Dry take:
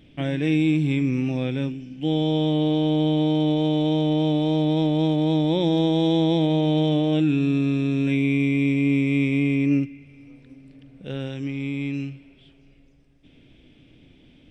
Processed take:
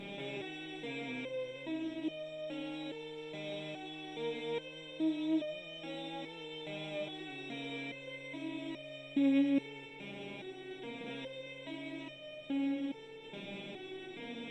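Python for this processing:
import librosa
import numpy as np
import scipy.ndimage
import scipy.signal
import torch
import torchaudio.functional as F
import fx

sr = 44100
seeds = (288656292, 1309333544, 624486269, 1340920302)

y = fx.bin_compress(x, sr, power=0.2)
y = fx.hum_notches(y, sr, base_hz=50, count=3)
y = fx.resonator_held(y, sr, hz=2.4, low_hz=200.0, high_hz=610.0)
y = F.gain(torch.from_numpy(y), -6.5).numpy()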